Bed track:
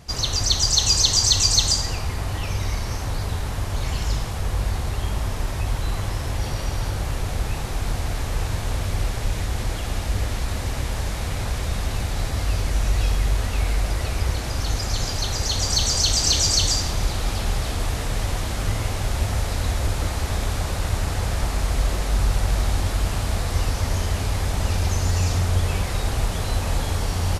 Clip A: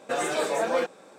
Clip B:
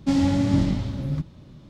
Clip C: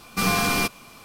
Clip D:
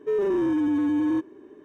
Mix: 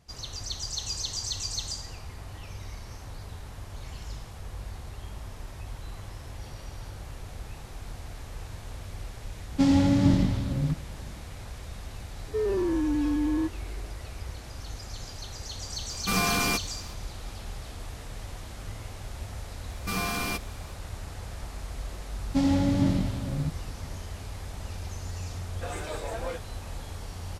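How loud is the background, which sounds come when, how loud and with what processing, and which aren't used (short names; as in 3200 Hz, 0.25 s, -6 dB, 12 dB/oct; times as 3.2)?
bed track -15 dB
9.52 add B -0.5 dB
12.27 add D -3.5 dB
15.9 add C -4 dB
19.7 add C -8.5 dB
22.28 add B -3.5 dB + bell 640 Hz +2.5 dB
25.52 add A -10 dB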